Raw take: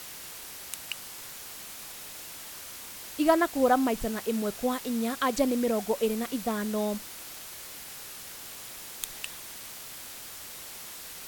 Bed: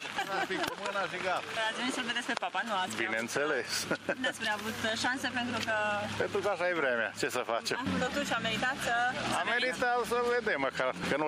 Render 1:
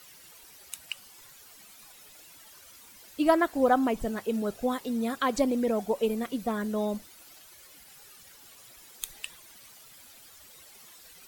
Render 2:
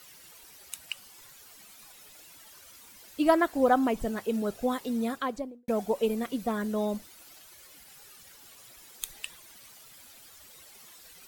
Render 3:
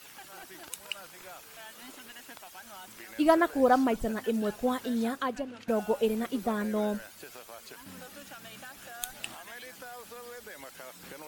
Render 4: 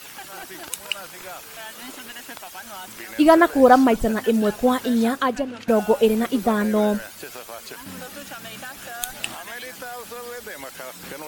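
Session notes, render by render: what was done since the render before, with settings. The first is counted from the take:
noise reduction 13 dB, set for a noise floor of -43 dBFS
4.99–5.68 s: studio fade out
add bed -16 dB
trim +10 dB; peak limiter -2 dBFS, peak gain reduction 2.5 dB

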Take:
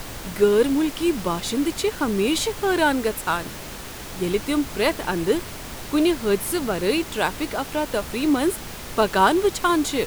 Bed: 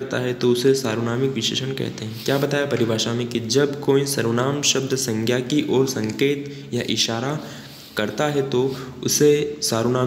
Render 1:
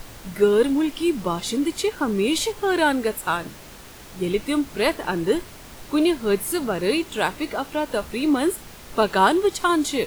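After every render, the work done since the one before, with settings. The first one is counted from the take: noise print and reduce 7 dB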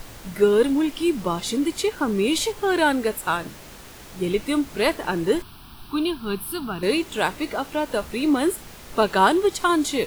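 5.42–6.83 s: static phaser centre 2 kHz, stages 6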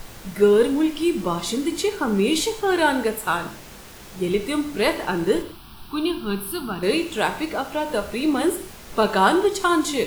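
gated-style reverb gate 210 ms falling, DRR 7.5 dB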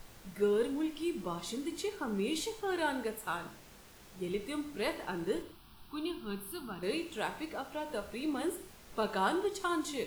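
trim -14 dB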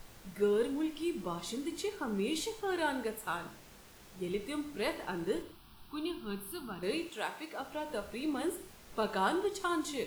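7.09–7.60 s: high-pass 450 Hz 6 dB/octave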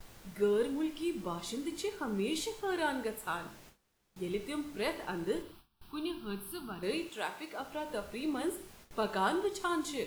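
gate with hold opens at -44 dBFS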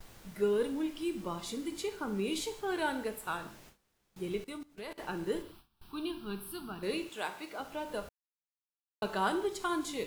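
4.44–4.98 s: level held to a coarse grid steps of 21 dB; 8.09–9.02 s: mute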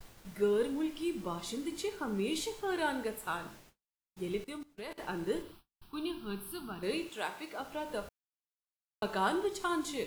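expander -50 dBFS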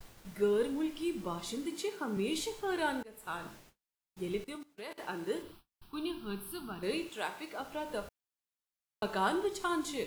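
1.66–2.17 s: high-pass 140 Hz 24 dB/octave; 3.03–3.46 s: fade in, from -23.5 dB; 4.55–5.43 s: high-pass 270 Hz 6 dB/octave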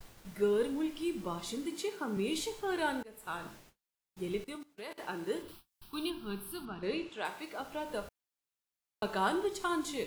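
5.48–6.10 s: treble shelf 3.1 kHz +9 dB; 6.65–7.25 s: distance through air 99 m

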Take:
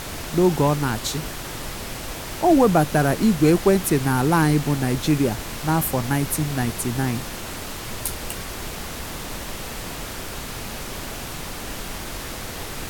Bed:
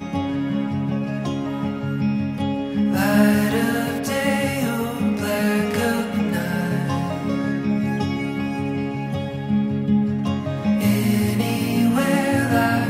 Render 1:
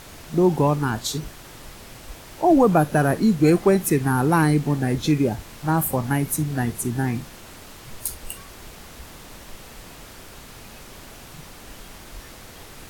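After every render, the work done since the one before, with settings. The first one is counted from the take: noise print and reduce 10 dB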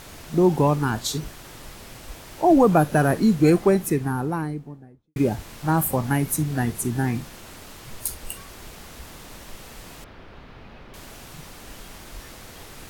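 3.33–5.16 s: studio fade out; 10.04–10.94 s: distance through air 320 m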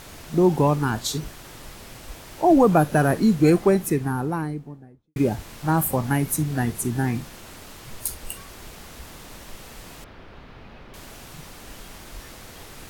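no audible change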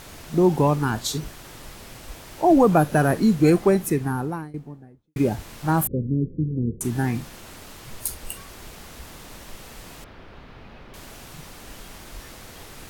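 4.09–4.54 s: fade out equal-power, to -18.5 dB; 5.87–6.81 s: steep low-pass 500 Hz 72 dB/octave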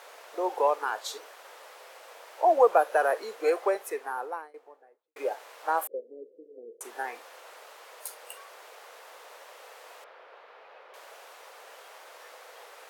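elliptic high-pass 480 Hz, stop band 70 dB; treble shelf 2.6 kHz -11 dB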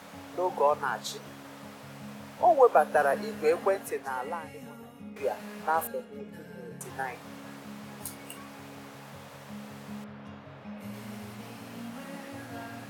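add bed -23.5 dB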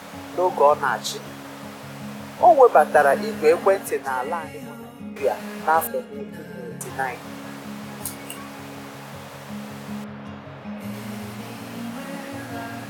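trim +8.5 dB; peak limiter -3 dBFS, peak gain reduction 2.5 dB

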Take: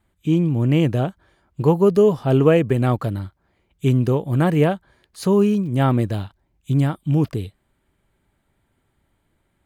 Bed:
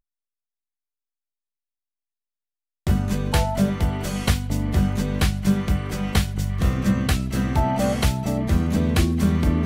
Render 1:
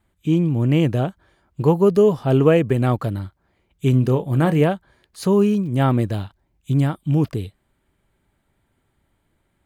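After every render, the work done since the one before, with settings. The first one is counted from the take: 3.90–4.61 s: doubling 31 ms -12 dB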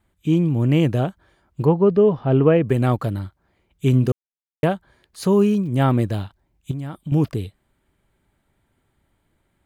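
1.65–2.66 s: distance through air 320 m; 4.12–4.63 s: mute; 6.71–7.12 s: compression 16:1, threshold -25 dBFS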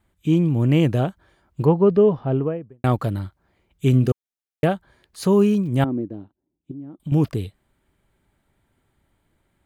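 1.96–2.84 s: studio fade out; 3.88–4.69 s: Butterworth band-stop 1 kHz, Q 5.4; 5.84–7.00 s: band-pass filter 300 Hz, Q 2.7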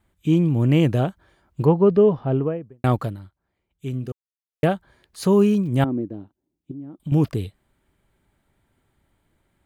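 2.99–4.64 s: dip -11.5 dB, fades 0.18 s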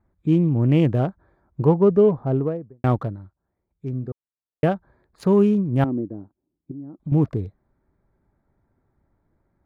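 local Wiener filter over 15 samples; treble shelf 3.6 kHz -10 dB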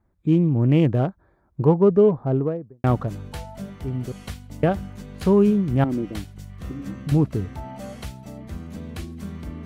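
add bed -14.5 dB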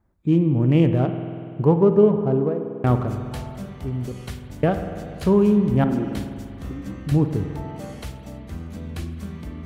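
spring tank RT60 2.4 s, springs 48 ms, chirp 50 ms, DRR 7 dB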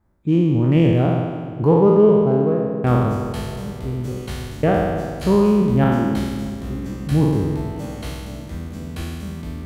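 spectral sustain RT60 1.66 s; filtered feedback delay 307 ms, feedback 68%, low-pass 950 Hz, level -15 dB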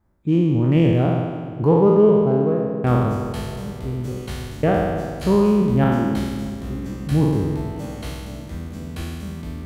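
trim -1 dB

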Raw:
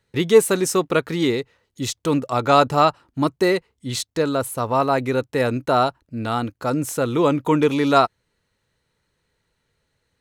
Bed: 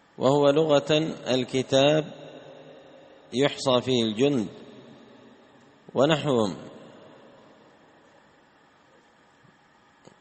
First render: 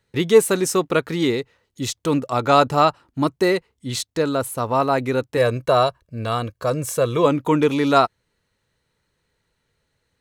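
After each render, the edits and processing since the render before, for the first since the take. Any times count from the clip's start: 5.37–7.26 s: comb 1.8 ms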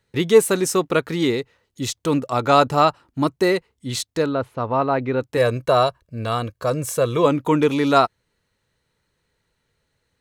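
4.26–5.21 s: distance through air 270 m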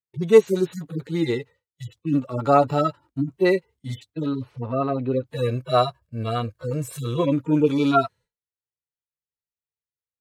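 harmonic-percussive separation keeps harmonic; expander -42 dBFS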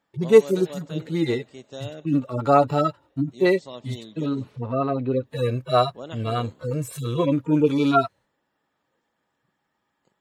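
add bed -17 dB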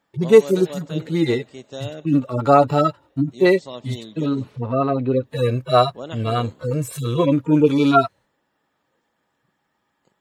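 trim +4 dB; peak limiter -1 dBFS, peak gain reduction 2.5 dB

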